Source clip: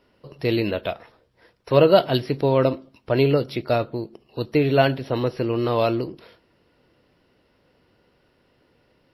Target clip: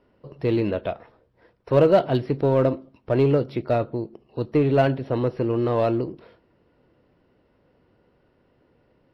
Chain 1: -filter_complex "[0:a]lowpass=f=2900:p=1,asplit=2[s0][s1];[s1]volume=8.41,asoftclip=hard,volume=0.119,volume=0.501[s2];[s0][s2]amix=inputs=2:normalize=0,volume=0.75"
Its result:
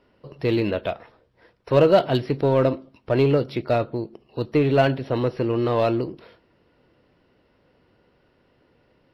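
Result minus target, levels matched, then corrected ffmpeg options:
4 kHz band +5.5 dB
-filter_complex "[0:a]lowpass=f=1100:p=1,asplit=2[s0][s1];[s1]volume=8.41,asoftclip=hard,volume=0.119,volume=0.501[s2];[s0][s2]amix=inputs=2:normalize=0,volume=0.75"

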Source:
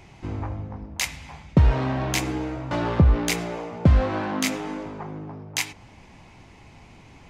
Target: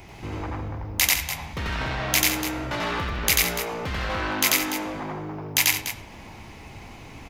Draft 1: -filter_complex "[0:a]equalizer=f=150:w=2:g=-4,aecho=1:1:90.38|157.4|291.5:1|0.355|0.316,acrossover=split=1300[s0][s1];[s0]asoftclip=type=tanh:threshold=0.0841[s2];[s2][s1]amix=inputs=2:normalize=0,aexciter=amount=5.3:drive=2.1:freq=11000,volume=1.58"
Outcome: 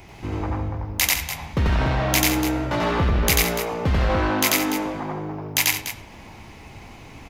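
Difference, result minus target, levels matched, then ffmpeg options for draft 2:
saturation: distortion -5 dB
-filter_complex "[0:a]equalizer=f=150:w=2:g=-4,aecho=1:1:90.38|157.4|291.5:1|0.355|0.316,acrossover=split=1300[s0][s1];[s0]asoftclip=type=tanh:threshold=0.0224[s2];[s2][s1]amix=inputs=2:normalize=0,aexciter=amount=5.3:drive=2.1:freq=11000,volume=1.58"

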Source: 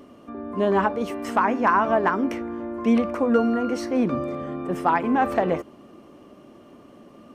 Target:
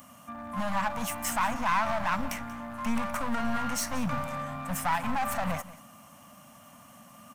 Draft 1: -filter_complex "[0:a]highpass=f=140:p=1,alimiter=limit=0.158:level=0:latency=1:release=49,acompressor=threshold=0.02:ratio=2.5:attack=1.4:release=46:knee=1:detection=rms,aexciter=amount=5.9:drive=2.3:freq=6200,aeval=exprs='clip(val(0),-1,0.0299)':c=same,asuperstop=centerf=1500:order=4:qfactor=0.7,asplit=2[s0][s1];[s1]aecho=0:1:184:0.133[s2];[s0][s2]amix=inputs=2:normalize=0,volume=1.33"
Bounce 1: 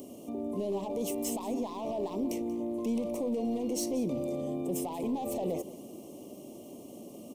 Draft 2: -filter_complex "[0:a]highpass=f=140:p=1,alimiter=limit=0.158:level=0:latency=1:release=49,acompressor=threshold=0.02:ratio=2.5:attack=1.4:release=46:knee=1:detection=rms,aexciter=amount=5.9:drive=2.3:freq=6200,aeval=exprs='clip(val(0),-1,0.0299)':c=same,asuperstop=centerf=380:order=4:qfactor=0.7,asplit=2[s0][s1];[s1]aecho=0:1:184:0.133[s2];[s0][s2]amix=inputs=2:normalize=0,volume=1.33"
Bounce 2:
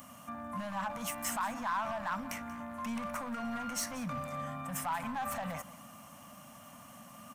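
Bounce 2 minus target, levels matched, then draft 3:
compression: peak gain reduction +10 dB
-filter_complex "[0:a]highpass=f=140:p=1,alimiter=limit=0.158:level=0:latency=1:release=49,aexciter=amount=5.9:drive=2.3:freq=6200,aeval=exprs='clip(val(0),-1,0.0299)':c=same,asuperstop=centerf=380:order=4:qfactor=0.7,asplit=2[s0][s1];[s1]aecho=0:1:184:0.133[s2];[s0][s2]amix=inputs=2:normalize=0,volume=1.33"

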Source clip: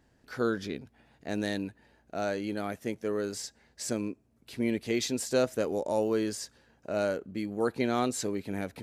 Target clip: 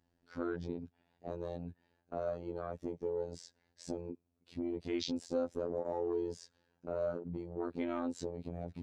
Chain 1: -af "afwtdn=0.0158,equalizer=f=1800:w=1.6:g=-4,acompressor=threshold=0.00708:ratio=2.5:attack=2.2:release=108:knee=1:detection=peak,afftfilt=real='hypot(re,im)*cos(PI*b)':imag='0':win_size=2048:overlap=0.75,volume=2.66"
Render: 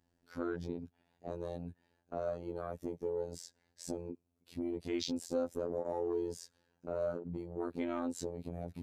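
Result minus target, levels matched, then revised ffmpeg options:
8 kHz band +5.0 dB
-af "afwtdn=0.0158,lowpass=5700,equalizer=f=1800:w=1.6:g=-4,acompressor=threshold=0.00708:ratio=2.5:attack=2.2:release=108:knee=1:detection=peak,afftfilt=real='hypot(re,im)*cos(PI*b)':imag='0':win_size=2048:overlap=0.75,volume=2.66"

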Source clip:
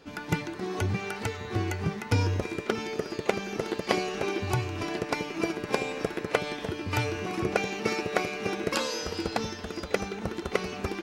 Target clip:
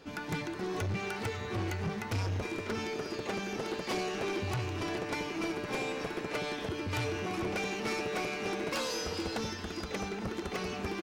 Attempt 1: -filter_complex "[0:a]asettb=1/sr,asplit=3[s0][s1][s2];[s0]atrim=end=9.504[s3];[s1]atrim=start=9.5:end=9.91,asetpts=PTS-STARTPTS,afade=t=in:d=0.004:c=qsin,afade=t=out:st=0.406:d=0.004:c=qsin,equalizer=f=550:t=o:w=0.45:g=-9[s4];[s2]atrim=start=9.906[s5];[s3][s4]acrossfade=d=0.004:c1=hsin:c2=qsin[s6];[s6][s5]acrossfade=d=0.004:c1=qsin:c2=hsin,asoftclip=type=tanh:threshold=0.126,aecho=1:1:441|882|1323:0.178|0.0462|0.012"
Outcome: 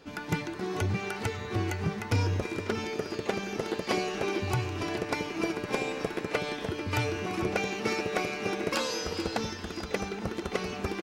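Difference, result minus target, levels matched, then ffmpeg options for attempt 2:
saturation: distortion -8 dB
-filter_complex "[0:a]asettb=1/sr,asplit=3[s0][s1][s2];[s0]atrim=end=9.504[s3];[s1]atrim=start=9.5:end=9.91,asetpts=PTS-STARTPTS,afade=t=in:d=0.004:c=qsin,afade=t=out:st=0.406:d=0.004:c=qsin,equalizer=f=550:t=o:w=0.45:g=-9[s4];[s2]atrim=start=9.906[s5];[s3][s4]acrossfade=d=0.004:c1=hsin:c2=qsin[s6];[s6][s5]acrossfade=d=0.004:c1=qsin:c2=hsin,asoftclip=type=tanh:threshold=0.0335,aecho=1:1:441|882|1323:0.178|0.0462|0.012"

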